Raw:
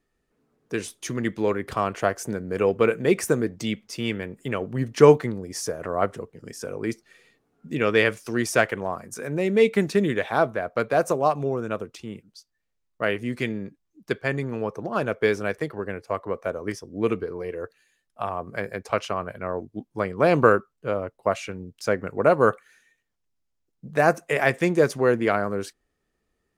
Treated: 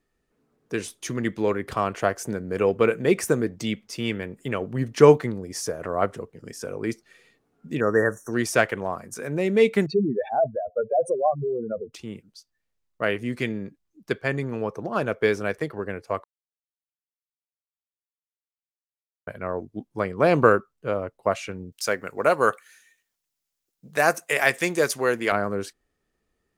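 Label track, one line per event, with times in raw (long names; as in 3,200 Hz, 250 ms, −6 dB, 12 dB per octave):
7.800000	8.330000	linear-phase brick-wall band-stop 1,900–5,500 Hz
9.860000	11.930000	expanding power law on the bin magnitudes exponent 3.7
16.240000	19.270000	silence
21.720000	25.320000	spectral tilt +3 dB per octave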